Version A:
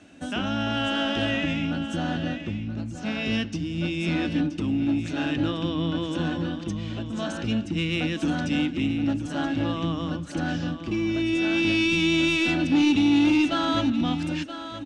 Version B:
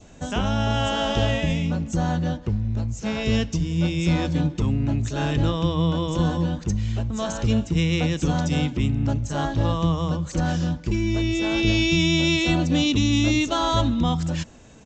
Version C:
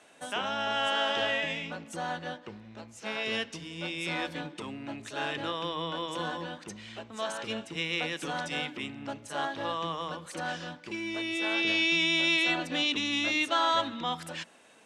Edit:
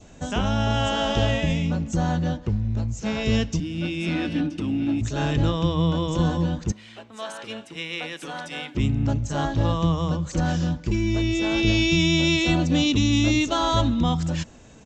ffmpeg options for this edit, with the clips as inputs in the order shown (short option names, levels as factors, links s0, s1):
-filter_complex "[1:a]asplit=3[s0][s1][s2];[s0]atrim=end=3.602[s3];[0:a]atrim=start=3.598:end=5.012[s4];[s1]atrim=start=5.008:end=6.722[s5];[2:a]atrim=start=6.718:end=8.752[s6];[s2]atrim=start=8.748[s7];[s3][s4]acrossfade=d=0.004:c1=hsin:c2=hsin[s8];[s8][s5]acrossfade=d=0.004:c1=hsin:c2=hsin[s9];[s9][s6]acrossfade=d=0.004:c1=hsin:c2=hsin[s10];[s10][s7]acrossfade=d=0.004:c1=hsin:c2=hsin"